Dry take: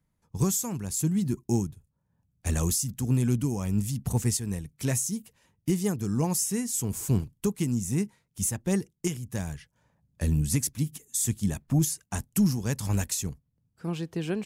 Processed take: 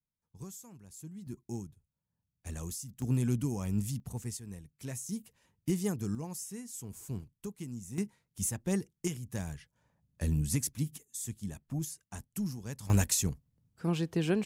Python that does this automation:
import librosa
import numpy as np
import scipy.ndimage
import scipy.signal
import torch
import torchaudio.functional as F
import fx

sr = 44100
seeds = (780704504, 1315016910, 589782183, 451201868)

y = fx.gain(x, sr, db=fx.steps((0.0, -20.0), (1.27, -13.5), (3.02, -5.0), (4.0, -13.0), (5.09, -5.0), (6.15, -14.0), (7.98, -5.0), (11.03, -12.0), (12.9, 1.0)))